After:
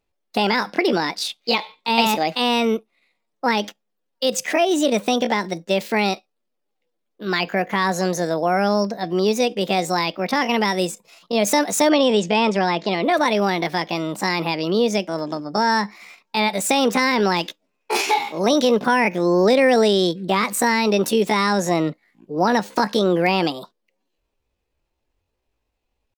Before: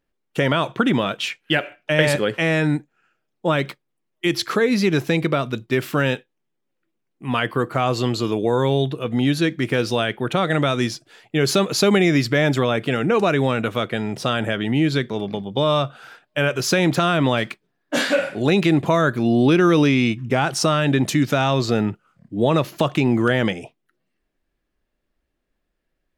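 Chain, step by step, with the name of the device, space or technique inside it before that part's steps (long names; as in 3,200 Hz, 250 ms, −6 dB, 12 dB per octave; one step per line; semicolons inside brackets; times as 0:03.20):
chipmunk voice (pitch shifter +7 semitones)
0:11.89–0:13.04: Bessel low-pass filter 5,700 Hz, order 6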